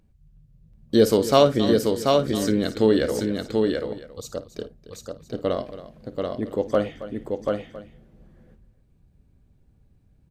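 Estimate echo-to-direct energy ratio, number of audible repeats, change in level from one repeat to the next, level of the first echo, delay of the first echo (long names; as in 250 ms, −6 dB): −2.5 dB, 5, repeats not evenly spaced, −15.5 dB, 54 ms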